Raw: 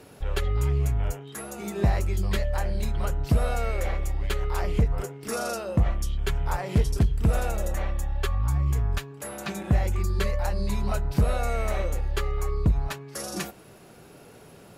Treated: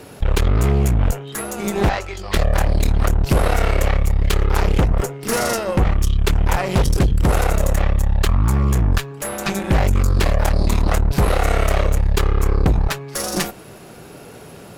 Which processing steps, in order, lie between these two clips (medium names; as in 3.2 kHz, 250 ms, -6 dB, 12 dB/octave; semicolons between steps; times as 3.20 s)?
1.89–2.34 s: three-band isolator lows -18 dB, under 450 Hz, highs -18 dB, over 6.1 kHz; Chebyshev shaper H 5 -13 dB, 6 -8 dB, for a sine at -13 dBFS; trim +3.5 dB